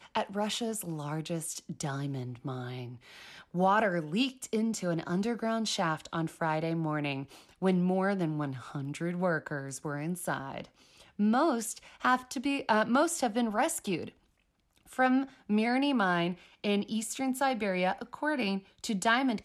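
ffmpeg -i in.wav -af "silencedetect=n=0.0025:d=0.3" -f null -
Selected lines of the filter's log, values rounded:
silence_start: 14.12
silence_end: 14.76 | silence_duration: 0.64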